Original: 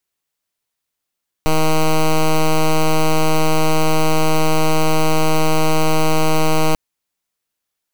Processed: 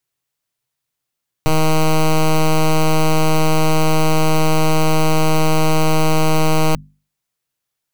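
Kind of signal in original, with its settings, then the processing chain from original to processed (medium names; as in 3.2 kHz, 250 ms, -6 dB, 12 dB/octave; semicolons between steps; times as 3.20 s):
pulse 157 Hz, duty 9% -13 dBFS 5.29 s
peaking EQ 130 Hz +14.5 dB 0.34 oct; hum notches 50/100/150/200/250 Hz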